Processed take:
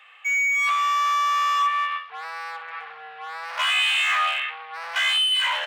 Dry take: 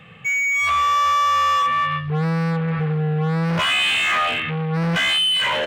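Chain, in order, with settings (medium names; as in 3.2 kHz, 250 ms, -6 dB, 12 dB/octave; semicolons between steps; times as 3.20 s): inverse Chebyshev high-pass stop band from 300 Hz, stop band 50 dB; on a send: flutter echo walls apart 10 m, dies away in 0.24 s; on the sum: trim -2.5 dB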